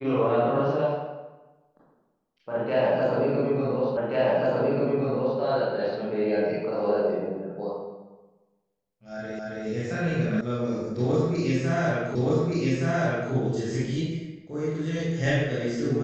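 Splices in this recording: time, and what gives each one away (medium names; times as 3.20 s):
3.97 s: repeat of the last 1.43 s
9.39 s: repeat of the last 0.27 s
10.41 s: sound stops dead
12.15 s: repeat of the last 1.17 s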